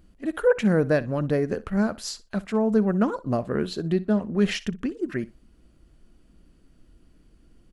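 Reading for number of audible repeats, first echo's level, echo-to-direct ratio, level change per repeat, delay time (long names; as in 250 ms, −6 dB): 2, −19.0 dB, −19.0 dB, −16.0 dB, 61 ms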